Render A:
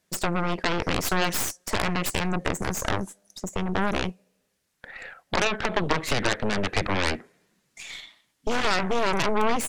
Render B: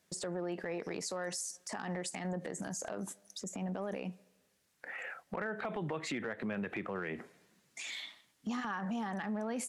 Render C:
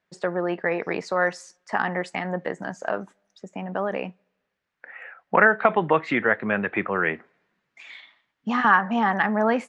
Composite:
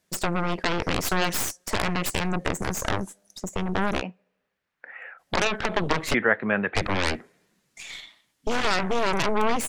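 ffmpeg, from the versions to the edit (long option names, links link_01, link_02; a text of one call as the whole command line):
ffmpeg -i take0.wav -i take1.wav -i take2.wav -filter_complex "[2:a]asplit=2[link_01][link_02];[0:a]asplit=3[link_03][link_04][link_05];[link_03]atrim=end=4.03[link_06];[link_01]atrim=start=3.99:end=5.21[link_07];[link_04]atrim=start=5.17:end=6.142[link_08];[link_02]atrim=start=6.138:end=6.752[link_09];[link_05]atrim=start=6.748[link_10];[link_06][link_07]acrossfade=duration=0.04:curve1=tri:curve2=tri[link_11];[link_11][link_08]acrossfade=duration=0.04:curve1=tri:curve2=tri[link_12];[link_12][link_09]acrossfade=duration=0.004:curve1=hsin:curve2=hsin[link_13];[link_13][link_10]acrossfade=duration=0.004:curve1=hsin:curve2=hsin" out.wav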